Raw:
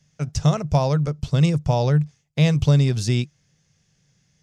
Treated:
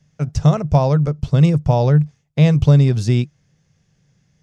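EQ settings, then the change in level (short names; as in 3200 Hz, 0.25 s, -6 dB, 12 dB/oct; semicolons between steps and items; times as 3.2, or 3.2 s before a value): high shelf 2200 Hz -9.5 dB; +5.0 dB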